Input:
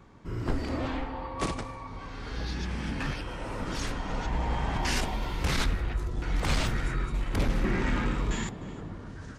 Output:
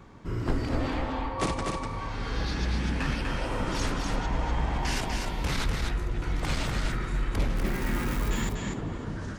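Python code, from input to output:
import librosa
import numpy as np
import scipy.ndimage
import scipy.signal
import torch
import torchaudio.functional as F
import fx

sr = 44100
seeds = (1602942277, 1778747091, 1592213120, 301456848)

y = fx.crossing_spikes(x, sr, level_db=-28.5, at=(7.56, 8.3))
y = fx.rider(y, sr, range_db=5, speed_s=0.5)
y = y + 10.0 ** (-4.0 / 20.0) * np.pad(y, (int(246 * sr / 1000.0), 0))[:len(y)]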